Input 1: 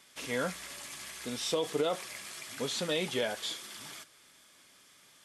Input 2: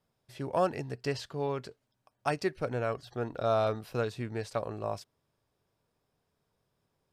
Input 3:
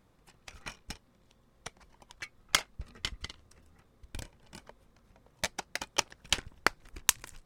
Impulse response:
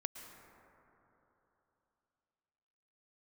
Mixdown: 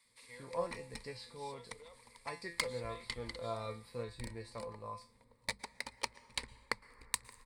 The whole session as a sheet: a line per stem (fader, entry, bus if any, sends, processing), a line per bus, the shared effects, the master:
-13.5 dB, 0.00 s, send -17.5 dB, high-pass 1.2 kHz 6 dB/octave; auto duck -12 dB, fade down 0.50 s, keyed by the second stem
-1.0 dB, 0.00 s, no send, feedback comb 170 Hz, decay 0.32 s, harmonics all, mix 90%
-17.5 dB, 0.05 s, send -9.5 dB, hum notches 50/100/150/200 Hz; level rider gain up to 9 dB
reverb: on, RT60 3.3 s, pre-delay 103 ms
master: rippled EQ curve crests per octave 0.95, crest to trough 13 dB

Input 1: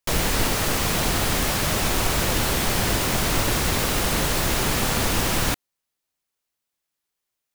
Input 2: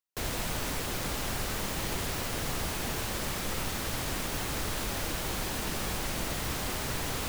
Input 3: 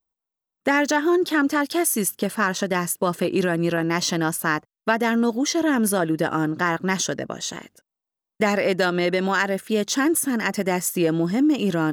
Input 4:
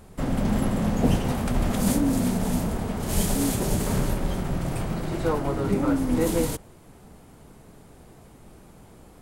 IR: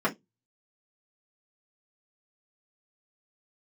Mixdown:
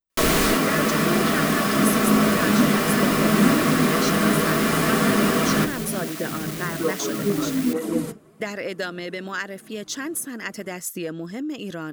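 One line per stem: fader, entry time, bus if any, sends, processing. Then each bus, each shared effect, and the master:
+0.5 dB, 0.10 s, send -9.5 dB, auto duck -11 dB, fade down 0.20 s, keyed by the third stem
-5.0 dB, 0.45 s, no send, square wave that keeps the level; steep high-pass 1.5 kHz; treble shelf 8.2 kHz +8 dB
-5.0 dB, 0.00 s, no send, harmonic-percussive split harmonic -6 dB
-6.0 dB, 1.55 s, send -7 dB, cancelling through-zero flanger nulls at 1.2 Hz, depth 4.7 ms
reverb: on, RT60 0.15 s, pre-delay 3 ms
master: peaking EQ 860 Hz -7 dB 0.49 oct

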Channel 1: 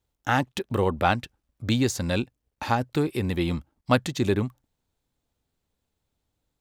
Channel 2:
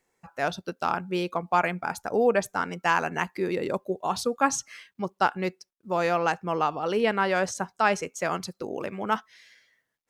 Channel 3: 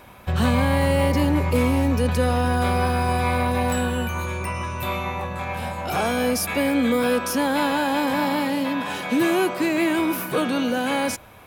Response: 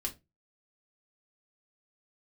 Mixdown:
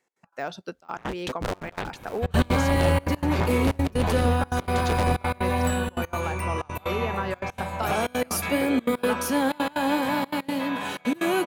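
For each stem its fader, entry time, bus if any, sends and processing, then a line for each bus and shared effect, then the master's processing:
-0.5 dB, 0.70 s, bus A, no send, echo send -20.5 dB, cycle switcher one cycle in 3, inverted
+0.5 dB, 0.00 s, bus A, no send, no echo send, de-esser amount 95%; high-pass 210 Hz 6 dB/octave; compression 1.5:1, threshold -31 dBFS, peak gain reduction 5 dB
+2.0 dB, 1.95 s, no bus, no send, no echo send, band-stop 5.2 kHz, Q 12; flange 0.73 Hz, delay 7.4 ms, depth 7.9 ms, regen +71%
bus A: 0.0 dB, treble shelf 11 kHz -10.5 dB; compression 6:1, threshold -25 dBFS, peak gain reduction 9.5 dB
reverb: none
echo: delay 586 ms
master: trance gate "x.x.xxxxx" 186 bpm -24 dB

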